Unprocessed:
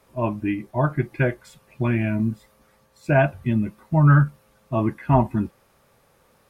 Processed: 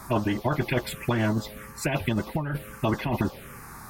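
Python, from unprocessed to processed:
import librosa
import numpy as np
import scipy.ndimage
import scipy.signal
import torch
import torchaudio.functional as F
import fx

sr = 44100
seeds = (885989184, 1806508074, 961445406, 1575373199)

y = fx.stretch_vocoder(x, sr, factor=0.6)
y = fx.over_compress(y, sr, threshold_db=-23.0, ratio=-1.0)
y = fx.env_phaser(y, sr, low_hz=490.0, high_hz=2400.0, full_db=-19.5)
y = fx.spectral_comp(y, sr, ratio=2.0)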